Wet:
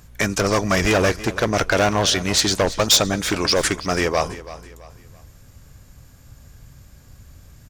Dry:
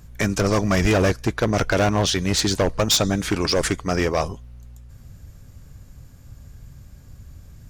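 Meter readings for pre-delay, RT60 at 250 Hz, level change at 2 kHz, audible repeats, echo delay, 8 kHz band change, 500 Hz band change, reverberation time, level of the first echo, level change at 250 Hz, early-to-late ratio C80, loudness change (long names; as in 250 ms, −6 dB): no reverb audible, no reverb audible, +4.0 dB, 3, 331 ms, +4.0 dB, +1.5 dB, no reverb audible, −16.0 dB, −1.0 dB, no reverb audible, +2.0 dB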